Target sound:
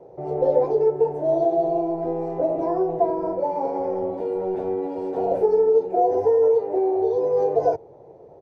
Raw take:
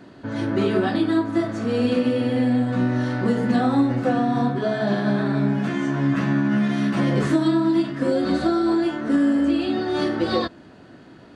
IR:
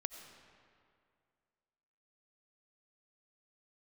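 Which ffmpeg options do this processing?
-filter_complex "[0:a]acrossover=split=220[a][b];[a]asoftclip=type=tanh:threshold=-31dB[c];[c][b]amix=inputs=2:normalize=0,asetrate=59535,aresample=44100,firequalizer=gain_entry='entry(140,0);entry(210,-15);entry(470,5);entry(700,5);entry(1200,-17);entry(2100,-28);entry(4200,-26)':delay=0.05:min_phase=1"

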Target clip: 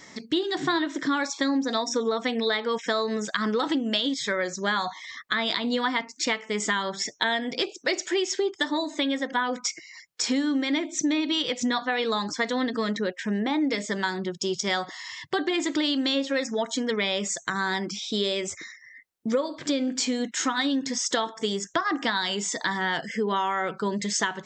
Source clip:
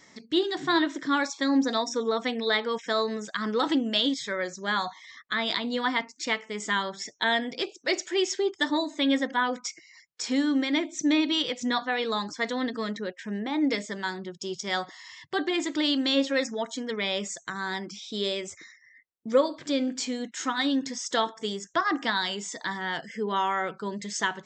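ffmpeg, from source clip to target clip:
-filter_complex "[0:a]acompressor=threshold=-30dB:ratio=6,asettb=1/sr,asplit=3[a][b][c];[a]atrim=end=8.564[d];[b]atrim=start=8.56:end=9.33,asetpts=PTS-STARTPTS,afade=t=in:d=0.004:c=qsin,afade=t=out:st=0.766:d=0.004:c=qsin,highpass=240[e];[c]atrim=start=9.326[f];[d][e]acrossfade=d=0.004:c1=hsin:c2=qsin[g];[g][f]acrossfade=d=0.004:c1=qsin:c2=hsin,volume=7.5dB"

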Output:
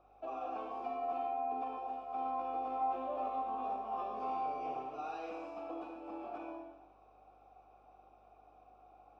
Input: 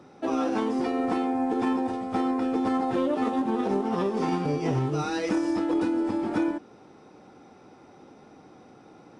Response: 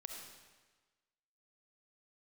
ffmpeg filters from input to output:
-filter_complex "[0:a]highpass=200,alimiter=limit=-20.5dB:level=0:latency=1,asplit=3[a][b][c];[a]bandpass=f=730:t=q:w=8,volume=0dB[d];[b]bandpass=f=1.09k:t=q:w=8,volume=-6dB[e];[c]bandpass=f=2.44k:t=q:w=8,volume=-9dB[f];[d][e][f]amix=inputs=3:normalize=0,aeval=exprs='val(0)+0.000282*(sin(2*PI*50*n/s)+sin(2*PI*2*50*n/s)/2+sin(2*PI*3*50*n/s)/3+sin(2*PI*4*50*n/s)/4+sin(2*PI*5*50*n/s)/5)':c=same,asettb=1/sr,asplit=3[g][h][i];[g]atrim=end=2.234[j];[h]atrim=start=2.23:end=4.71,asetpts=PTS-STARTPTS,afade=t=in:d=0.004:c=qsin,afade=t=out:st=2.476:d=0.004:c=qsin,asplit=2[k][l];[l]adelay=19,volume=-5dB[m];[k][m]amix=inputs=2:normalize=0,atrim=end_sample=109368[n];[i]atrim=start=4.706[o];[j][n]acrossfade=d=0.004:c1=hsin:c2=qsin[p];[p][o]acrossfade=d=0.004:c1=qsin:c2=hsin[q];[1:a]atrim=start_sample=2205,asetrate=61740,aresample=44100[r];[q][r]afir=irnorm=-1:irlink=0,volume=6dB"

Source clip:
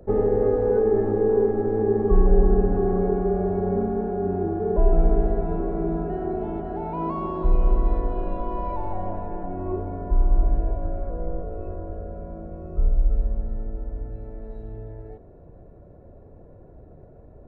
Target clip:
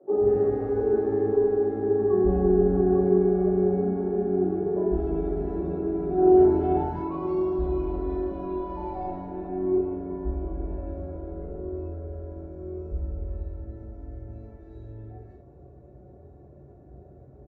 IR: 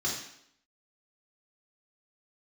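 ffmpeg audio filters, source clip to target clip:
-filter_complex "[0:a]asettb=1/sr,asplit=3[a][b][c];[a]atrim=end=6.174[d];[b]atrim=start=6.17:end=6.84,asetpts=PTS-STARTPTS,afade=t=in:d=0.004:c=qsin,afade=t=out:st=0.666:d=0.004:c=qsin,acontrast=74[e];[c]atrim=start=6.836[f];[d][e]acrossfade=d=0.004:c1=hsin:c2=qsin[g];[g][f]acrossfade=d=0.004:c1=qsin:c2=hsin,acrossover=split=220|1300[h][i][j];[h]adelay=130[k];[j]adelay=180[l];[k][i][l]amix=inputs=3:normalize=0[m];[1:a]atrim=start_sample=2205,atrim=end_sample=3528[n];[m][n]afir=irnorm=-1:irlink=0,volume=-8dB"

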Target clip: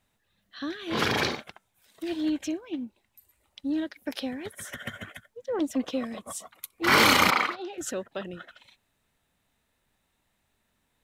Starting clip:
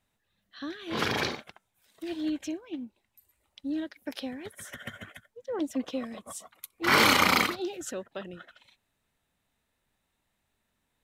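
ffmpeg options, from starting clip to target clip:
-filter_complex "[0:a]asplit=2[a][b];[b]asoftclip=type=tanh:threshold=-25dB,volume=-5dB[c];[a][c]amix=inputs=2:normalize=0,asettb=1/sr,asplit=3[d][e][f];[d]atrim=end=7.304[g];[e]atrim=start=7.3:end=7.78,asetpts=PTS-STARTPTS,afade=t=in:d=0.004:c=qsin,afade=t=out:st=0.476:d=0.004:c=qsin,bandpass=f=1.2k:t=q:w=0.74:csg=0[h];[f]atrim=start=7.776[i];[g][h]acrossfade=d=0.004:c1=hsin:c2=qsin[j];[j][i]acrossfade=d=0.004:c1=qsin:c2=hsin"

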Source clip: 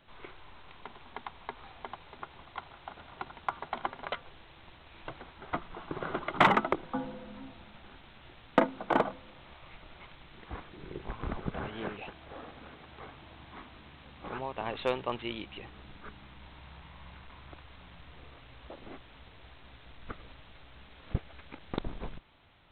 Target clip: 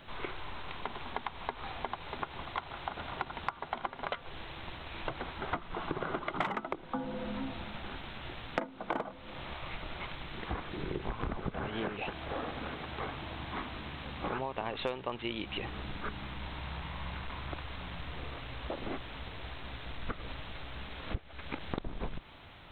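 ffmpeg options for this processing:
-af "acompressor=threshold=-42dB:ratio=8,volume=10dB"

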